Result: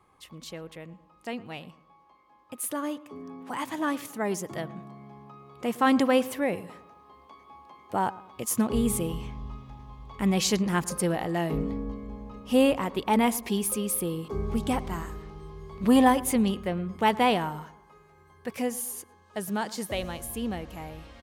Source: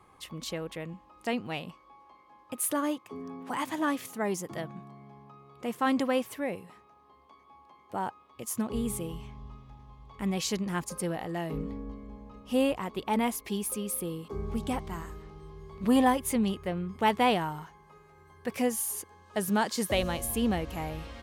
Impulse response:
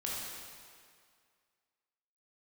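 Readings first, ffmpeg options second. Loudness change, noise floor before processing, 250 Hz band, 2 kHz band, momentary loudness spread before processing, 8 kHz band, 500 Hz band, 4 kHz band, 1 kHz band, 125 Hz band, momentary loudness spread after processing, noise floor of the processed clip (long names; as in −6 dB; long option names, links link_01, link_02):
+3.5 dB, −59 dBFS, +3.5 dB, +2.5 dB, 17 LU, +2.5 dB, +3.0 dB, +2.5 dB, +3.0 dB, +3.5 dB, 20 LU, −59 dBFS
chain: -filter_complex "[0:a]asplit=2[link_01][link_02];[link_02]adelay=111,lowpass=frequency=1600:poles=1,volume=-18dB,asplit=2[link_03][link_04];[link_04]adelay=111,lowpass=frequency=1600:poles=1,volume=0.47,asplit=2[link_05][link_06];[link_06]adelay=111,lowpass=frequency=1600:poles=1,volume=0.47,asplit=2[link_07][link_08];[link_08]adelay=111,lowpass=frequency=1600:poles=1,volume=0.47[link_09];[link_01][link_03][link_05][link_07][link_09]amix=inputs=5:normalize=0,dynaudnorm=framelen=300:gausssize=31:maxgain=11.5dB,volume=-4.5dB"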